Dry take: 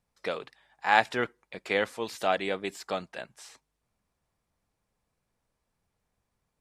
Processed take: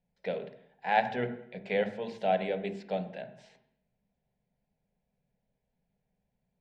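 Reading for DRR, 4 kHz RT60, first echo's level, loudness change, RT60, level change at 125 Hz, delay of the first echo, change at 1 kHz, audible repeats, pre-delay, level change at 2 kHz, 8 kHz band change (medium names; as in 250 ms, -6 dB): 7.0 dB, 0.70 s, no echo, -3.0 dB, 0.70 s, +4.0 dB, no echo, -3.0 dB, no echo, 3 ms, -7.0 dB, under -15 dB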